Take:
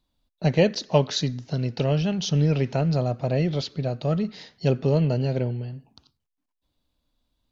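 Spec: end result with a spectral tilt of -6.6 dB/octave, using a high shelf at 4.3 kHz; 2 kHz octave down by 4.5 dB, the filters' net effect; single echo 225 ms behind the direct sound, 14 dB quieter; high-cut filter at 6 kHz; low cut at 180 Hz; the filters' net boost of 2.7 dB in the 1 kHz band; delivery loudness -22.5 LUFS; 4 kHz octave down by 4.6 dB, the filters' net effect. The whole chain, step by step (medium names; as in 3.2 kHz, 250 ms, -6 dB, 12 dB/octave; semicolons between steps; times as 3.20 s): high-pass 180 Hz; low-pass 6 kHz; peaking EQ 1 kHz +5 dB; peaking EQ 2 kHz -6.5 dB; peaking EQ 4 kHz -7 dB; treble shelf 4.3 kHz +7 dB; delay 225 ms -14 dB; trim +3.5 dB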